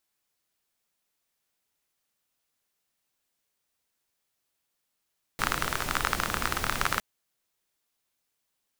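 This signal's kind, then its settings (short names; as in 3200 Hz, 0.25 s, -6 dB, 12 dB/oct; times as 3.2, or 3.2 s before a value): rain from filtered ticks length 1.61 s, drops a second 28, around 1300 Hz, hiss -2 dB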